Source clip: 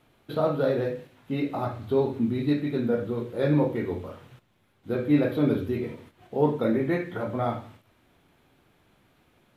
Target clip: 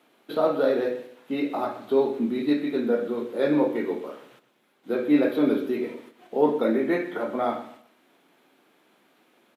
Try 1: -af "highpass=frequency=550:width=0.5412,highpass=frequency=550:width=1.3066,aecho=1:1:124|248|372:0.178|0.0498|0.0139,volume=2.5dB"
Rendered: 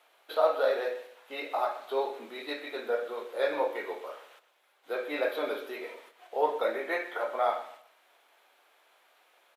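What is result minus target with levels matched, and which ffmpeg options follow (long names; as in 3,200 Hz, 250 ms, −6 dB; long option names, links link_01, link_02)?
250 Hz band −14.0 dB
-af "highpass=frequency=230:width=0.5412,highpass=frequency=230:width=1.3066,aecho=1:1:124|248|372:0.178|0.0498|0.0139,volume=2.5dB"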